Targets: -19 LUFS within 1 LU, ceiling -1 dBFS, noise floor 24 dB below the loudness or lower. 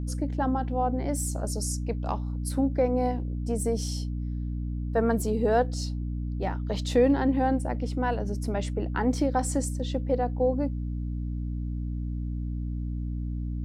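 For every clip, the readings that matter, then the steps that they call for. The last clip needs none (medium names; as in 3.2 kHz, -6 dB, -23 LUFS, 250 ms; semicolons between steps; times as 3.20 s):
hum 60 Hz; highest harmonic 300 Hz; hum level -28 dBFS; loudness -28.5 LUFS; peak level -10.5 dBFS; loudness target -19.0 LUFS
-> de-hum 60 Hz, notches 5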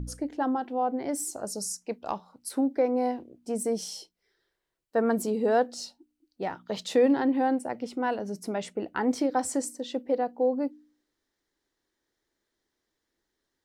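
hum not found; loudness -29.0 LUFS; peak level -13.0 dBFS; loudness target -19.0 LUFS
-> trim +10 dB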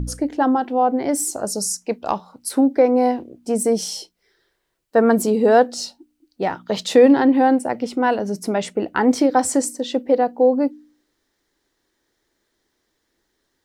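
loudness -19.0 LUFS; peak level -3.0 dBFS; noise floor -73 dBFS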